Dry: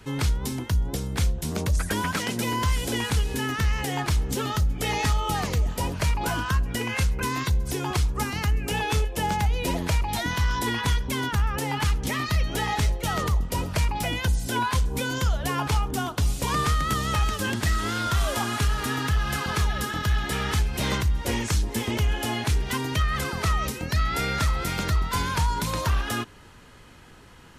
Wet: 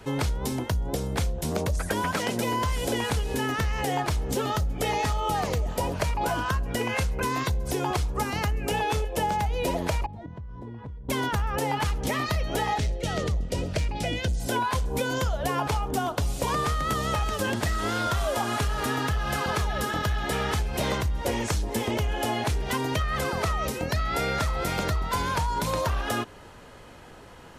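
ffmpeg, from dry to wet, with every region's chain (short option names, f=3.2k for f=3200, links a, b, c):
-filter_complex "[0:a]asettb=1/sr,asplit=3[a][b][c];[a]atrim=end=10.064[d];[b]atrim=start=10.06:end=11.09,asetpts=PTS-STARTPTS,afade=t=in:d=0.004:c=qsin,afade=t=out:st=1.026:d=0.004:c=qsin,bandpass=f=110:t=q:w=0.96,acompressor=threshold=-37dB:ratio=5:attack=3.2:release=140:knee=1:detection=peak[e];[c]atrim=start=11.086[f];[d][e]acrossfade=d=0.004:c1=hsin:c2=qsin[g];[g][f]acrossfade=d=0.004:c1=qsin:c2=hsin,asettb=1/sr,asplit=3[h][i][j];[h]atrim=end=12.784[k];[i]atrim=start=12.78:end=14.4,asetpts=PTS-STARTPTS,afade=t=in:d=0.004:c=qsin,afade=t=out:st=1.616:d=0.004:c=qsin,lowpass=7.6k,equalizer=f=1k:w=1.4:g=-14,asoftclip=type=hard:threshold=-18dB[l];[j]atrim=start=14.396[m];[k][l]acrossfade=d=0.004:c1=hsin:c2=qsin[n];[n][m]acrossfade=d=0.004:c1=qsin:c2=hsin,equalizer=f=610:t=o:w=1.3:g=9,acompressor=threshold=-23dB:ratio=6"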